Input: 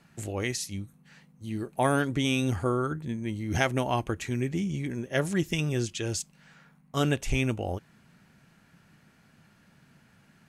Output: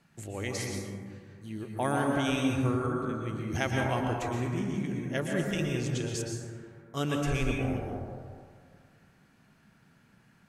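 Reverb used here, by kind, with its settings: plate-style reverb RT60 2 s, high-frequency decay 0.3×, pre-delay 105 ms, DRR -0.5 dB; trim -5.5 dB

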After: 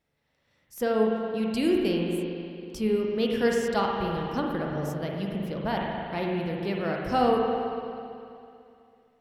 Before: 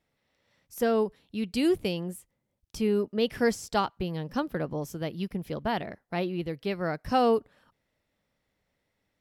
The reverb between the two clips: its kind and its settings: spring tank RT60 2.6 s, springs 41/55 ms, chirp 65 ms, DRR -1 dB; trim -1.5 dB

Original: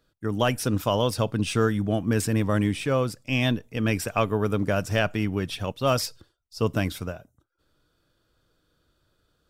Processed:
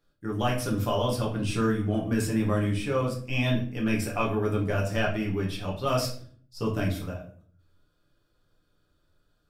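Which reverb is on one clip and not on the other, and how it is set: simulated room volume 50 m³, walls mixed, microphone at 0.86 m; trim -8 dB

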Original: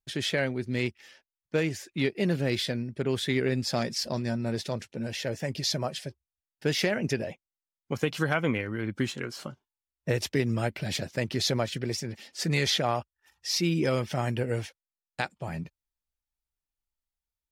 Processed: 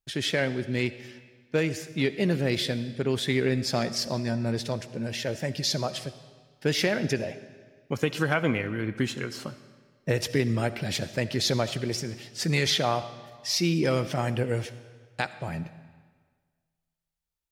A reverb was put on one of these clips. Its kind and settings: algorithmic reverb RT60 1.6 s, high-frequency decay 0.9×, pre-delay 25 ms, DRR 13.5 dB; trim +1.5 dB

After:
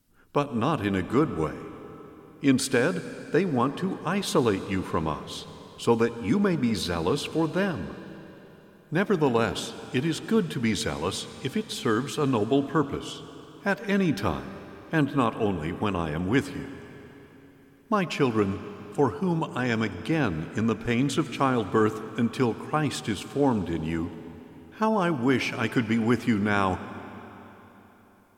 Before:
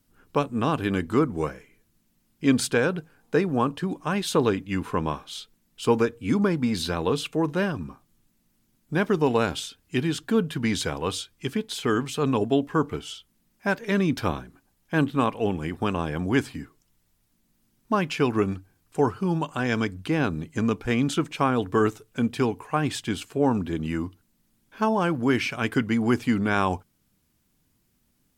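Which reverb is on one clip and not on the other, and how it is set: algorithmic reverb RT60 3.8 s, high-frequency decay 0.9×, pre-delay 50 ms, DRR 12.5 dB; trim -1 dB

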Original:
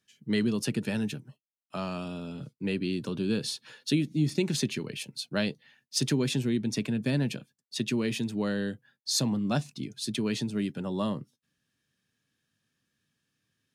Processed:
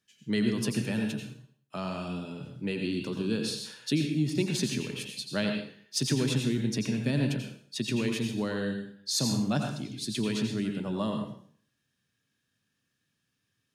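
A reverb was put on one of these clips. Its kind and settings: plate-style reverb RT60 0.53 s, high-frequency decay 0.95×, pre-delay 75 ms, DRR 3 dB; trim -1.5 dB

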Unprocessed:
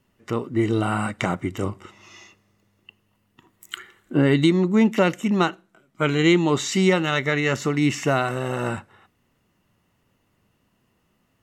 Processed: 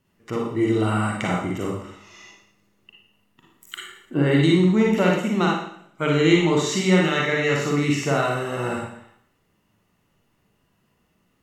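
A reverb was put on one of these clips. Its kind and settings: Schroeder reverb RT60 0.64 s, DRR -2 dB; trim -3.5 dB

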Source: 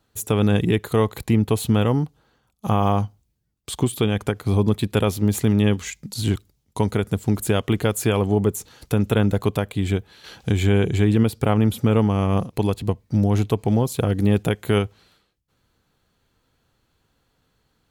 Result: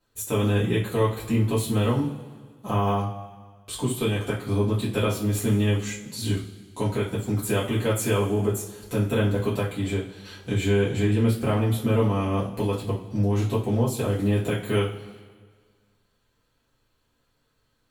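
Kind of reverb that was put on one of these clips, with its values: two-slope reverb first 0.31 s, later 1.7 s, from -18 dB, DRR -8.5 dB; trim -11.5 dB

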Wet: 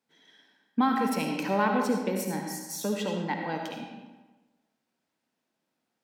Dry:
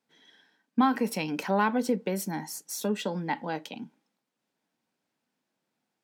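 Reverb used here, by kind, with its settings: algorithmic reverb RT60 1.2 s, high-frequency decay 0.75×, pre-delay 30 ms, DRR 2 dB; trim -1.5 dB

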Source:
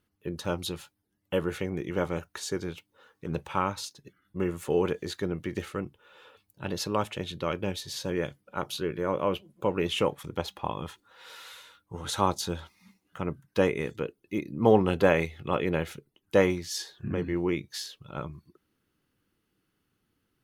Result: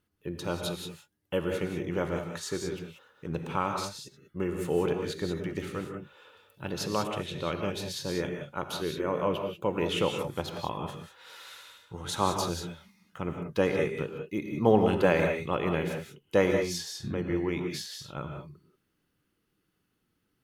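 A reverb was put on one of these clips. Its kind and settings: gated-style reverb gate 210 ms rising, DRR 3.5 dB; trim -2 dB

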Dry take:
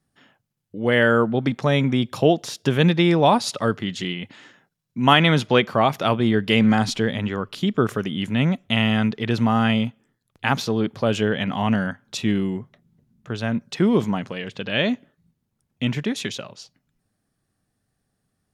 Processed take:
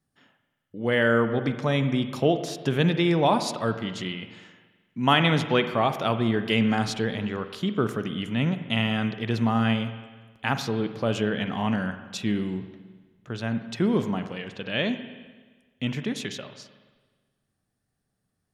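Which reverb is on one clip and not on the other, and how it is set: spring tank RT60 1.4 s, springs 43/53 ms, chirp 75 ms, DRR 9 dB; trim -5 dB

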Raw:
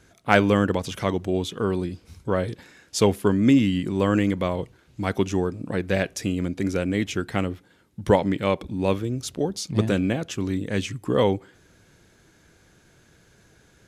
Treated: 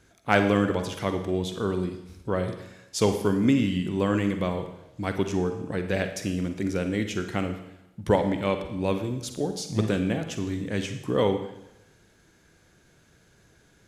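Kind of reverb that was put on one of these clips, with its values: Schroeder reverb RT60 0.9 s, DRR 7 dB; trim -3.5 dB

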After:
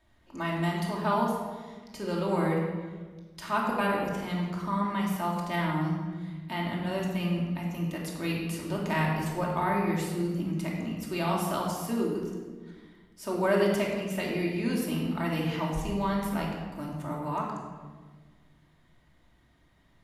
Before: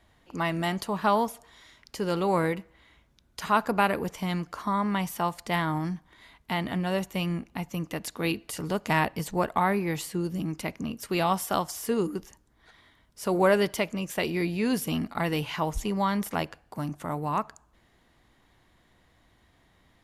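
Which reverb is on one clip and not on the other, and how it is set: simulated room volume 1400 m³, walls mixed, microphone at 2.7 m; trim -8 dB

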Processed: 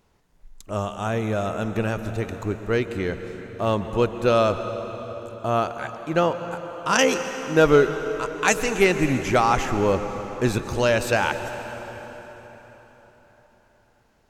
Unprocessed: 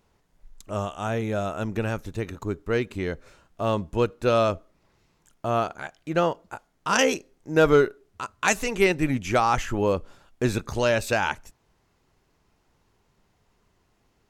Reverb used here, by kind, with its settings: plate-style reverb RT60 4.6 s, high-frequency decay 0.75×, pre-delay 110 ms, DRR 8.5 dB; trim +2 dB

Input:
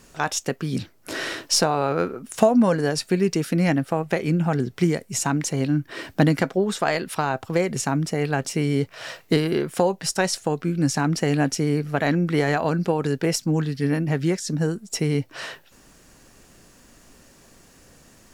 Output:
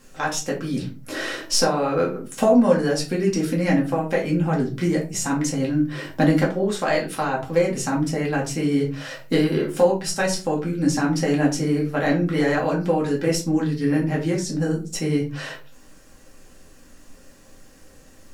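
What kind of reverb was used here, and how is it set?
simulated room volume 150 m³, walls furnished, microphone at 2.2 m; trim -4.5 dB

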